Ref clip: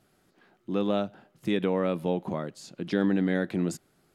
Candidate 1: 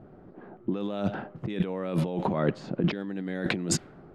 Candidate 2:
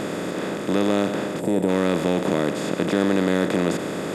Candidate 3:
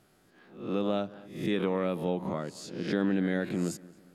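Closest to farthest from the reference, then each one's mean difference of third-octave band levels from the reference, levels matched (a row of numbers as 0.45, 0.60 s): 3, 1, 2; 4.0, 7.5, 11.5 dB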